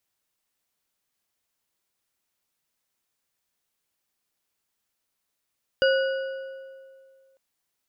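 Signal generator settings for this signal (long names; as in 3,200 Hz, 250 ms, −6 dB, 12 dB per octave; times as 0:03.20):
struck metal bar, lowest mode 535 Hz, modes 4, decay 2.16 s, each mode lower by 5 dB, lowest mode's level −17 dB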